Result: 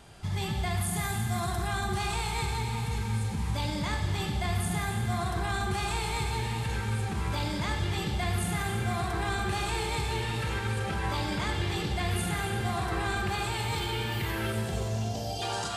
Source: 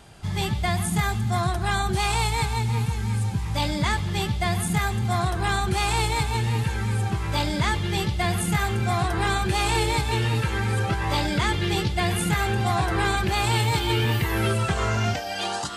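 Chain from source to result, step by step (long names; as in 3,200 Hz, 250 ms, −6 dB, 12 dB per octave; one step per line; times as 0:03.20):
0:00.81–0:01.67: high-shelf EQ 7,700 Hz +10.5 dB
brickwall limiter −20.5 dBFS, peak gain reduction 11 dB
0:14.52–0:15.42: Butterworth band-reject 1,700 Hz, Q 0.6
echo with a time of its own for lows and highs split 470 Hz, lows 527 ms, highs 284 ms, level −10.5 dB
four-comb reverb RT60 1.4 s, combs from 32 ms, DRR 4.5 dB
level −3.5 dB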